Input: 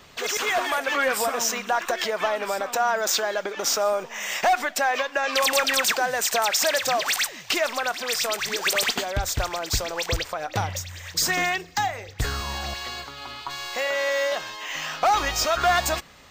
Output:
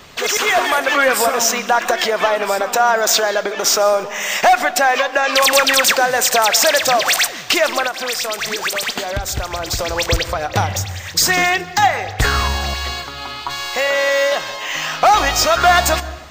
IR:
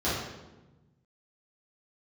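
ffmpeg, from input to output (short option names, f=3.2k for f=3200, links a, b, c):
-filter_complex "[0:a]asplit=2[a][b];[1:a]atrim=start_sample=2205,adelay=127[c];[b][c]afir=irnorm=-1:irlink=0,volume=-27.5dB[d];[a][d]amix=inputs=2:normalize=0,asettb=1/sr,asplit=3[e][f][g];[e]atrim=end=7.864[h];[f]atrim=start=7.86:end=9.79,asetpts=PTS-STARTPTS,afade=t=in:d=0.004:c=qsin,afade=t=out:st=1.926:d=0.004:c=qsin,acompressor=threshold=-27dB:ratio=6[i];[g]atrim=start=9.786[j];[h][i]acrossfade=d=0.004:c1=hsin:c2=qsin[k];[k][j]acrossfade=d=0.004:c1=qsin:c2=hsin,asettb=1/sr,asplit=3[l][m][n];[l]atrim=end=11.824[o];[m]atrim=start=11.82:end=12.48,asetpts=PTS-STARTPTS,afade=t=in:d=0.004:c=qsin,afade=t=out:st=0.656:d=0.004:c=qsin,equalizer=f=1.4k:w=0.45:g=6[p];[n]atrim=start=12.476[q];[o][p]acrossfade=d=0.004:c1=hsin:c2=qsin[r];[r][q]acrossfade=d=0.004:c1=qsin:c2=hsin,volume=8.5dB"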